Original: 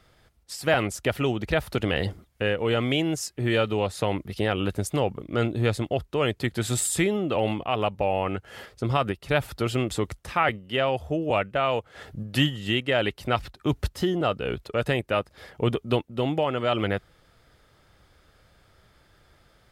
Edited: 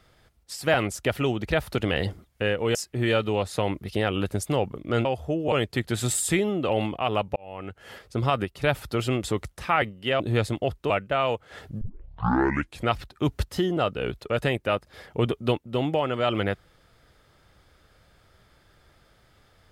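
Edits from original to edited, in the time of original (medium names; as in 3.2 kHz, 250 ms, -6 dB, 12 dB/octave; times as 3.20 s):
2.75–3.19 s: delete
5.49–6.19 s: swap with 10.87–11.34 s
8.03–8.73 s: fade in
12.25 s: tape start 1.10 s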